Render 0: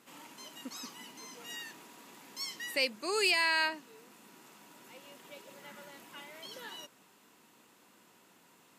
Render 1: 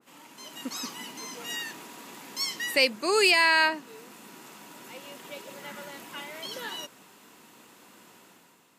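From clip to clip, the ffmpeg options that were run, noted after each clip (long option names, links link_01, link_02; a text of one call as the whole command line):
ffmpeg -i in.wav -af "dynaudnorm=framelen=110:gausssize=9:maxgain=9dB,adynamicequalizer=threshold=0.02:dfrequency=2100:dqfactor=0.7:tfrequency=2100:tqfactor=0.7:attack=5:release=100:ratio=0.375:range=2:mode=cutabove:tftype=highshelf" out.wav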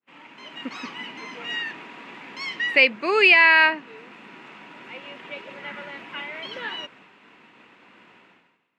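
ffmpeg -i in.wav -af "lowpass=frequency=2400:width_type=q:width=2.2,agate=range=-33dB:threshold=-50dB:ratio=3:detection=peak,volume=2.5dB" out.wav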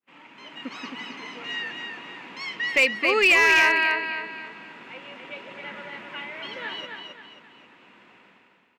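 ffmpeg -i in.wav -filter_complex "[0:a]aecho=1:1:266|532|798|1064|1330:0.562|0.219|0.0855|0.0334|0.013,asplit=2[link_01][link_02];[link_02]aeval=exprs='0.316*(abs(mod(val(0)/0.316+3,4)-2)-1)':channel_layout=same,volume=-3dB[link_03];[link_01][link_03]amix=inputs=2:normalize=0,volume=-7dB" out.wav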